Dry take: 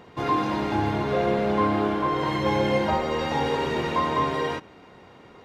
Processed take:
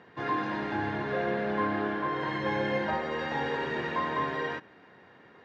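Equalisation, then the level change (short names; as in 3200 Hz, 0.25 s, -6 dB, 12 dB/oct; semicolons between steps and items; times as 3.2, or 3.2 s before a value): BPF 110–4600 Hz; bell 1700 Hz +14 dB 0.25 oct; -7.0 dB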